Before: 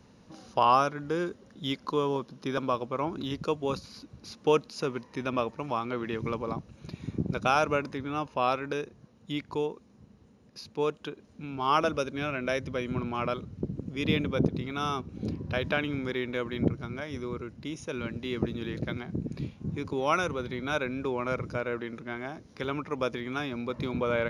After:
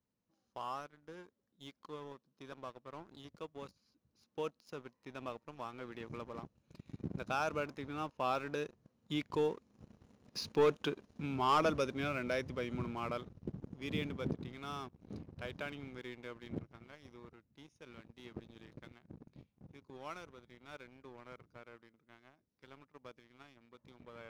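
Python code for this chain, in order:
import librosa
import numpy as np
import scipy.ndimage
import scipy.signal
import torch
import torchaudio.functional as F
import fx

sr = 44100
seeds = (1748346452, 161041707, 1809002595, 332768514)

y = fx.doppler_pass(x, sr, speed_mps=7, closest_m=4.7, pass_at_s=10.46)
y = fx.leveller(y, sr, passes=2)
y = y * 10.0 ** (-4.0 / 20.0)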